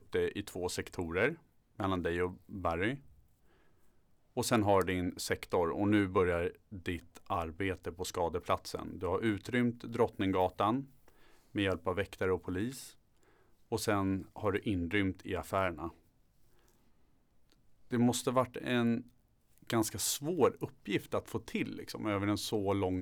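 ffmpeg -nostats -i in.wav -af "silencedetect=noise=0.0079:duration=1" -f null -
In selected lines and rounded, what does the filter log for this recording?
silence_start: 2.96
silence_end: 4.37 | silence_duration: 1.41
silence_start: 15.89
silence_end: 17.92 | silence_duration: 2.02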